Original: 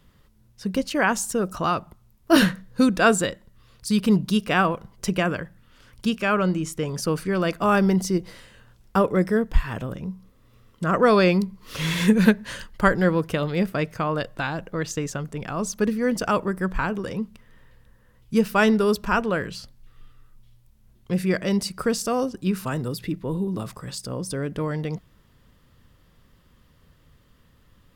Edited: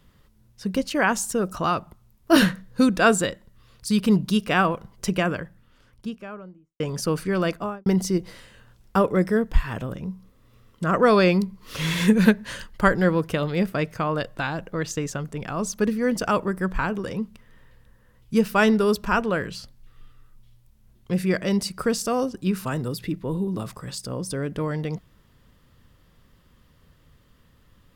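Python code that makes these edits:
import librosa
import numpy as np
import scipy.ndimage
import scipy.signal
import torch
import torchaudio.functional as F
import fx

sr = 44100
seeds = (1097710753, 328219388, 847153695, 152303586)

y = fx.studio_fade_out(x, sr, start_s=5.14, length_s=1.66)
y = fx.studio_fade_out(y, sr, start_s=7.44, length_s=0.42)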